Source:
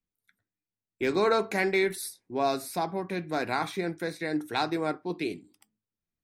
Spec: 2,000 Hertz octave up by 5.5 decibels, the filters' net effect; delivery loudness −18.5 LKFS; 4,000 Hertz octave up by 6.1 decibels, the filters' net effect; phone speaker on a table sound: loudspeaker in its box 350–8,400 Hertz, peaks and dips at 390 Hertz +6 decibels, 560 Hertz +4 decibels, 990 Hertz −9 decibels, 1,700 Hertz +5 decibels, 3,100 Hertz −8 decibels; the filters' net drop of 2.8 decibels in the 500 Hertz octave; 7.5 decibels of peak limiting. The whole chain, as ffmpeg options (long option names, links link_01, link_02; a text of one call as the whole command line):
ffmpeg -i in.wav -af "equalizer=frequency=500:width_type=o:gain=-9,equalizer=frequency=2000:width_type=o:gain=3.5,equalizer=frequency=4000:width_type=o:gain=8,alimiter=limit=-18dB:level=0:latency=1,highpass=frequency=350:width=0.5412,highpass=frequency=350:width=1.3066,equalizer=frequency=390:width_type=q:width=4:gain=6,equalizer=frequency=560:width_type=q:width=4:gain=4,equalizer=frequency=990:width_type=q:width=4:gain=-9,equalizer=frequency=1700:width_type=q:width=4:gain=5,equalizer=frequency=3100:width_type=q:width=4:gain=-8,lowpass=frequency=8400:width=0.5412,lowpass=frequency=8400:width=1.3066,volume=13dB" out.wav